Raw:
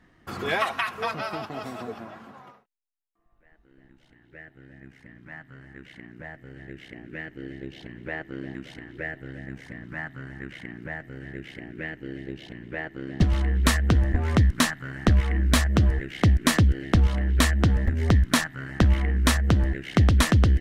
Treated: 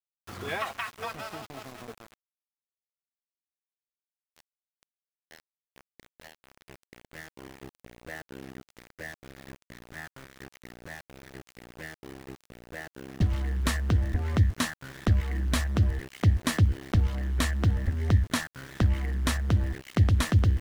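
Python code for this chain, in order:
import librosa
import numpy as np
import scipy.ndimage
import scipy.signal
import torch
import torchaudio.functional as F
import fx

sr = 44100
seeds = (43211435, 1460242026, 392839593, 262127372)

y = fx.peak_eq(x, sr, hz=97.0, db=10.0, octaves=0.35)
y = np.where(np.abs(y) >= 10.0 ** (-33.5 / 20.0), y, 0.0)
y = y * 10.0 ** (-7.0 / 20.0)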